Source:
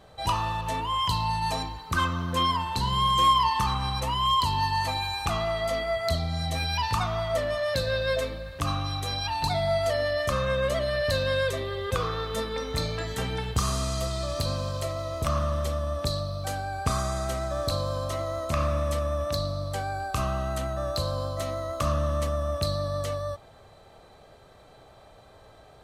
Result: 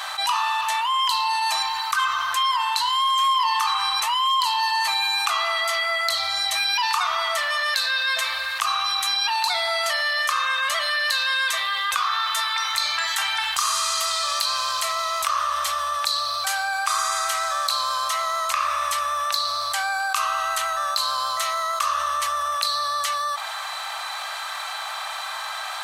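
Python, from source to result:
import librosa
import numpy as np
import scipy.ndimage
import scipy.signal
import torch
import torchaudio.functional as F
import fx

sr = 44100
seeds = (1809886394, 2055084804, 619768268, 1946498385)

y = scipy.signal.sosfilt(scipy.signal.cheby2(4, 40, 480.0, 'highpass', fs=sr, output='sos'), x)
y = fx.env_flatten(y, sr, amount_pct=70)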